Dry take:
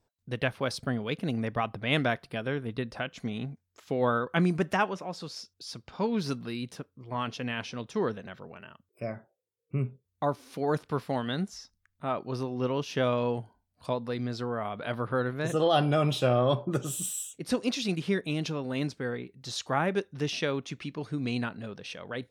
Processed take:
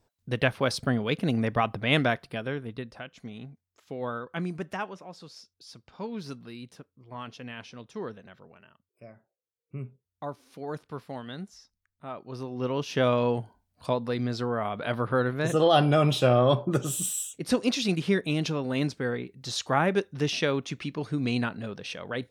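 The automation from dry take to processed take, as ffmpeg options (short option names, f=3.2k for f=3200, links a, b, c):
-af "volume=22dB,afade=t=out:st=1.72:d=1.28:silence=0.266073,afade=t=out:st=8.45:d=0.67:silence=0.446684,afade=t=in:st=9.12:d=0.64:silence=0.473151,afade=t=in:st=12.23:d=0.84:silence=0.281838"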